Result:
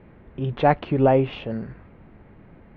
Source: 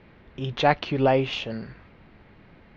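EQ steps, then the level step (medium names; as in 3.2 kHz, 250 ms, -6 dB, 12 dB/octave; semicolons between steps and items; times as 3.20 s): low-pass 2.6 kHz 12 dB/octave; tilt shelf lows +4.5 dB, about 1.2 kHz; 0.0 dB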